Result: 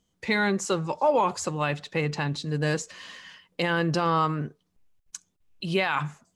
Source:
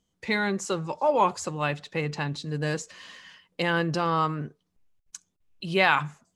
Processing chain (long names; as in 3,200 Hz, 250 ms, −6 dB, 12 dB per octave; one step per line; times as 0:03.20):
brickwall limiter −16 dBFS, peak gain reduction 9.5 dB
level +2.5 dB